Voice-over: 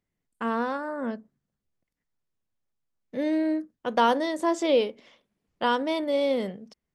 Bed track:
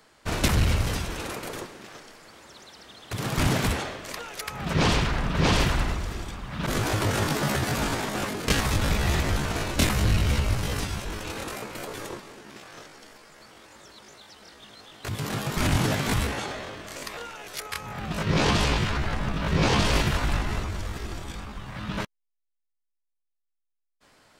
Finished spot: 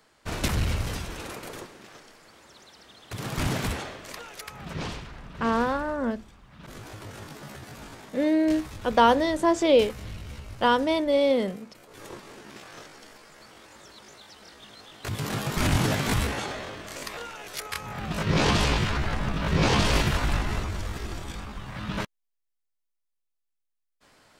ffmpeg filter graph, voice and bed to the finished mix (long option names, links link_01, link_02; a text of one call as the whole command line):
ffmpeg -i stem1.wav -i stem2.wav -filter_complex "[0:a]adelay=5000,volume=3dB[link_01];[1:a]volume=12.5dB,afade=type=out:start_time=4.26:duration=0.76:silence=0.237137,afade=type=in:start_time=11.88:duration=0.46:silence=0.149624[link_02];[link_01][link_02]amix=inputs=2:normalize=0" out.wav